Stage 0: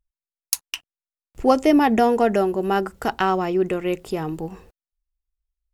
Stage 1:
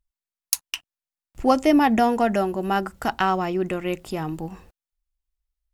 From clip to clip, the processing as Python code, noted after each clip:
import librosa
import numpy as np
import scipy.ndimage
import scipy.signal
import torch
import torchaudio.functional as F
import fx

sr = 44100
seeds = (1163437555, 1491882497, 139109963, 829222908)

y = fx.peak_eq(x, sr, hz=430.0, db=-9.5, octaves=0.4)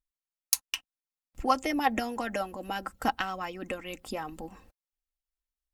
y = fx.hpss(x, sr, part='harmonic', gain_db=-13)
y = y + 0.45 * np.pad(y, (int(3.8 * sr / 1000.0), 0))[:len(y)]
y = F.gain(torch.from_numpy(y), -3.5).numpy()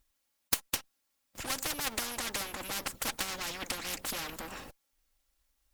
y = fx.lower_of_two(x, sr, delay_ms=3.6)
y = fx.spectral_comp(y, sr, ratio=4.0)
y = F.gain(torch.from_numpy(y), -1.0).numpy()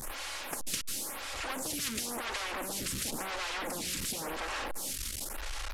y = fx.delta_mod(x, sr, bps=64000, step_db=-27.0)
y = fx.stagger_phaser(y, sr, hz=0.95)